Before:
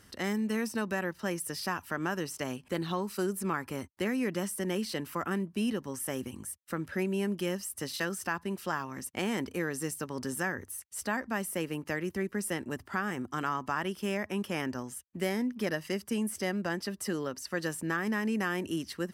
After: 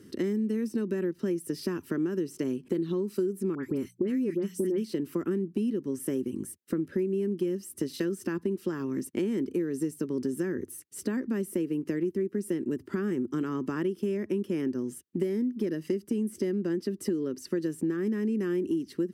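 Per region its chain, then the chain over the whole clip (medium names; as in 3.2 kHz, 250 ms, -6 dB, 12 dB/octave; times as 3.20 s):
3.55–4.84 s: hum notches 60/120/180 Hz + phase dispersion highs, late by 84 ms, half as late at 1.7 kHz
whole clip: high-pass 150 Hz 12 dB/octave; resonant low shelf 520 Hz +12 dB, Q 3; compression, threshold -24 dBFS; trim -2.5 dB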